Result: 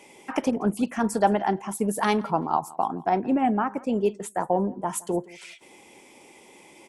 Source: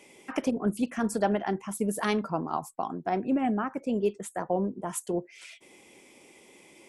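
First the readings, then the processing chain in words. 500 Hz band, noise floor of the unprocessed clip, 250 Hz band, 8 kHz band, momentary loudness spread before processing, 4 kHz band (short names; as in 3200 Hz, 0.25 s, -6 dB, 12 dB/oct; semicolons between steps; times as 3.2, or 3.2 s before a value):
+3.5 dB, -56 dBFS, +3.0 dB, +3.0 dB, 8 LU, +3.0 dB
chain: bell 870 Hz +7.5 dB 0.42 oct; on a send: feedback echo 0.169 s, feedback 18%, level -22 dB; on the sum: gain +3 dB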